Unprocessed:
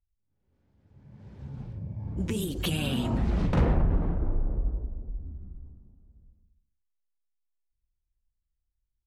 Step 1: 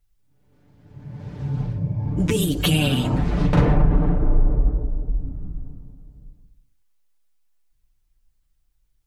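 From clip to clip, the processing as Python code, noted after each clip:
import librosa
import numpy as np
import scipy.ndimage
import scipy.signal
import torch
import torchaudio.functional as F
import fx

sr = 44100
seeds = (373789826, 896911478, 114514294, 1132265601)

y = x + 0.65 * np.pad(x, (int(6.8 * sr / 1000.0), 0))[:len(x)]
y = fx.rider(y, sr, range_db=5, speed_s=2.0)
y = y * librosa.db_to_amplitude(7.5)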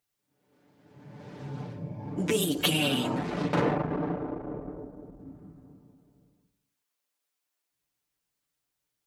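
y = fx.diode_clip(x, sr, knee_db=-11.0)
y = scipy.signal.sosfilt(scipy.signal.butter(2, 260.0, 'highpass', fs=sr, output='sos'), y)
y = y * librosa.db_to_amplitude(-1.5)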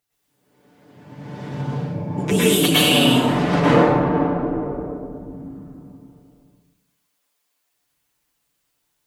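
y = fx.rev_plate(x, sr, seeds[0], rt60_s=0.87, hf_ratio=0.8, predelay_ms=95, drr_db=-8.5)
y = y * librosa.db_to_amplitude(3.0)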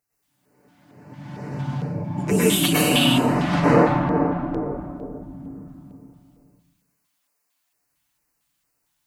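y = fx.filter_lfo_notch(x, sr, shape='square', hz=2.2, low_hz=450.0, high_hz=3400.0, q=1.3)
y = y * librosa.db_to_amplitude(-1.0)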